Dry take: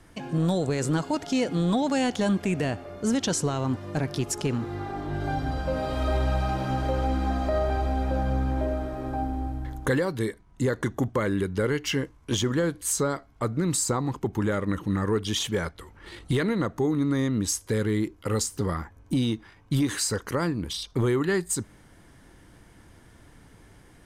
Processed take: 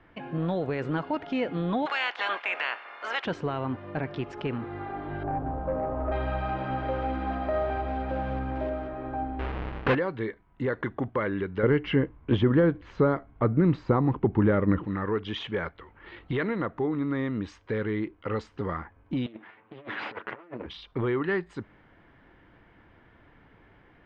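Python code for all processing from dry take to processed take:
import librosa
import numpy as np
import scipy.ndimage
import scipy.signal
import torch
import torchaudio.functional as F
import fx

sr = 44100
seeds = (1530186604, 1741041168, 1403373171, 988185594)

y = fx.spec_clip(x, sr, under_db=23, at=(1.85, 3.24), fade=0.02)
y = fx.highpass(y, sr, hz=790.0, slope=12, at=(1.85, 3.24), fade=0.02)
y = fx.chain(y, sr, fx.halfwave_gain(db=-3.0),
    fx.lowpass(hz=1100.0, slope=24),
    fx.leveller(passes=1), at=(5.23, 6.12))
y = fx.chain(y, sr, fx.block_float(bits=5),
    fx.highpass(hz=48.0, slope=12), at=(6.79, 8.89))
y = fx.chain(y, sr, fx.halfwave_hold(),
    fx.high_shelf(hz=9100.0, db=-4.0), at=(9.39, 9.95))
y = fx.chain(y, sr, fx.moving_average(points=5),
    fx.low_shelf(hz=500.0, db=11.0), at=(11.63, 14.85))
y = fx.chain(y, sr, fx.lower_of_two(delay_ms=9.1),
    fx.bandpass_edges(low_hz=220.0, high_hz=3100.0),
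    fx.over_compress(threshold_db=-36.0, ratio=-0.5), at=(19.26, 20.66))
y = scipy.signal.sosfilt(scipy.signal.butter(4, 2800.0, 'lowpass', fs=sr, output='sos'), y)
y = fx.low_shelf(y, sr, hz=290.0, db=-7.5)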